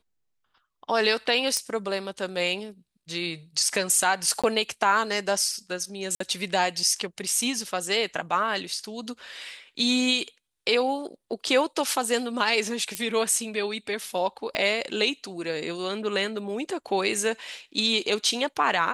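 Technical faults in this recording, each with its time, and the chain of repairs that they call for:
0:01.57: click −11 dBFS
0:04.42–0:04.44: drop-out 16 ms
0:06.15–0:06.20: drop-out 54 ms
0:12.95: click −11 dBFS
0:14.55: click −14 dBFS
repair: click removal
repair the gap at 0:04.42, 16 ms
repair the gap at 0:06.15, 54 ms

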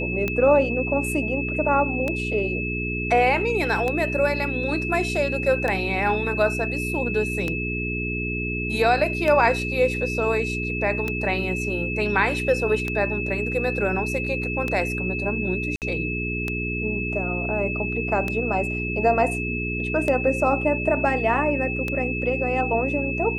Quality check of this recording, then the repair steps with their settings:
mains hum 60 Hz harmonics 7 −29 dBFS
scratch tick 33 1/3 rpm −12 dBFS
whistle 2,600 Hz −28 dBFS
0:15.76–0:15.82: drop-out 58 ms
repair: click removal
hum removal 60 Hz, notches 7
notch filter 2,600 Hz, Q 30
repair the gap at 0:15.76, 58 ms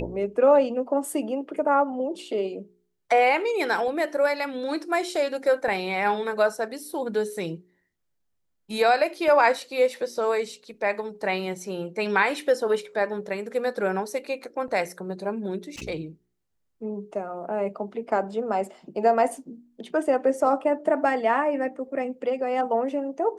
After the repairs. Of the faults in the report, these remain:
none of them is left

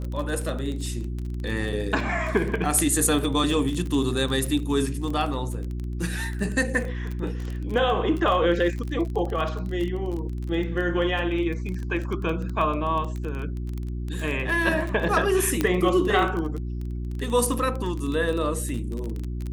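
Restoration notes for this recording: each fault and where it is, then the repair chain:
surface crackle 25 per second −28 dBFS
mains hum 60 Hz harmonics 6 −30 dBFS
0:15.61: click −9 dBFS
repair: click removal
hum removal 60 Hz, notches 6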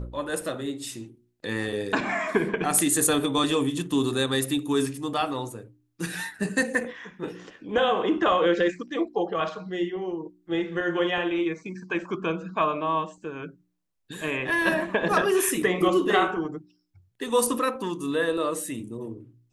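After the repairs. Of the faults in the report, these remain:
0:15.61: click

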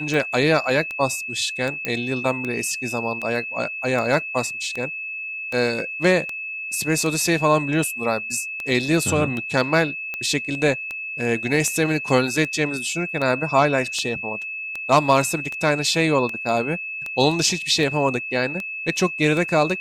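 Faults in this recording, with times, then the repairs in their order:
scratch tick 78 rpm
whistle 2,600 Hz −28 dBFS
0:01.85: click −10 dBFS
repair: click removal
notch filter 2,600 Hz, Q 30

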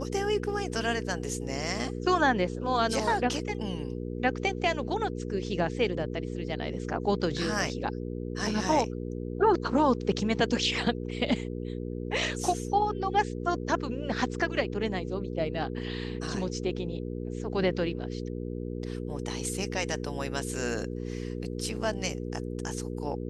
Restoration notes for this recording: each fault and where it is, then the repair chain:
mains hum 60 Hz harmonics 8 −35 dBFS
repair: hum removal 60 Hz, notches 8

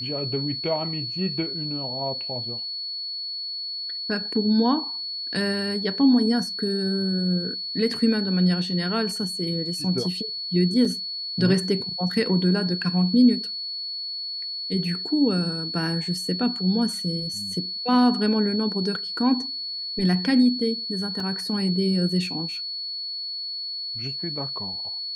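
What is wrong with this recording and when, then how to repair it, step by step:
whistle 4,400 Hz −29 dBFS
0:10.85: drop-out 4 ms
0:21.20: drop-out 2.8 ms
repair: notch filter 4,400 Hz, Q 30
repair the gap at 0:10.85, 4 ms
repair the gap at 0:21.20, 2.8 ms

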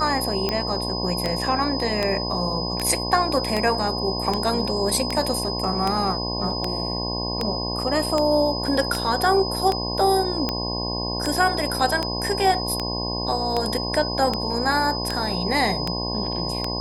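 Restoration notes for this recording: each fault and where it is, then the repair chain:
mains buzz 60 Hz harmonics 18 −29 dBFS
scratch tick 78 rpm −9 dBFS
whistle 5,000 Hz −28 dBFS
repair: click removal
hum removal 60 Hz, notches 18
notch filter 5,000 Hz, Q 30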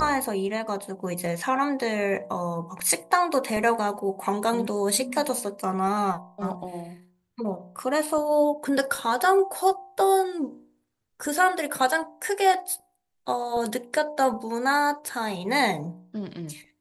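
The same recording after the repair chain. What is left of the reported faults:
none of them is left

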